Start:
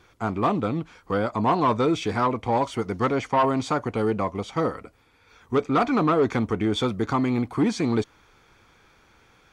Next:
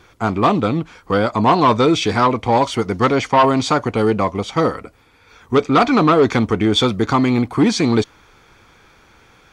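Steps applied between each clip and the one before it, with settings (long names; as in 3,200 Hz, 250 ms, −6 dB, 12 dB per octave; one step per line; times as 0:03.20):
dynamic equaliser 4,300 Hz, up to +6 dB, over −43 dBFS, Q 0.85
level +7.5 dB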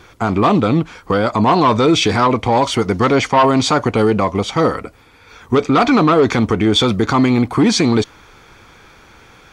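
brickwall limiter −11 dBFS, peak gain reduction 6.5 dB
level +5.5 dB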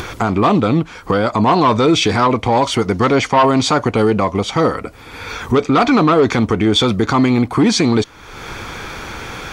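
upward compression, threshold −14 dBFS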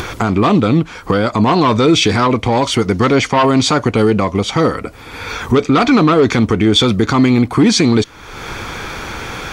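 dynamic equaliser 820 Hz, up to −5 dB, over −26 dBFS, Q 1
level +3 dB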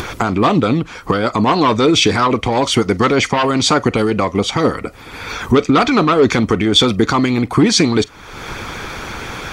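harmonic and percussive parts rebalanced percussive +7 dB
on a send at −20.5 dB: convolution reverb, pre-delay 40 ms
on the sum: level −5.5 dB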